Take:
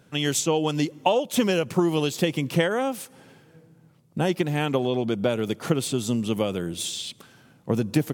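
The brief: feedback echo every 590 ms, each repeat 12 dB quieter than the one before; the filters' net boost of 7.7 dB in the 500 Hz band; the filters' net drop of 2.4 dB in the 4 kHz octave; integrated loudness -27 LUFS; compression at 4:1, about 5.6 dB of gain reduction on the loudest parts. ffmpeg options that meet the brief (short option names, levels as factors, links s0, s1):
-af "equalizer=f=500:t=o:g=9,equalizer=f=4000:t=o:g=-3.5,acompressor=threshold=0.126:ratio=4,aecho=1:1:590|1180|1770:0.251|0.0628|0.0157,volume=0.708"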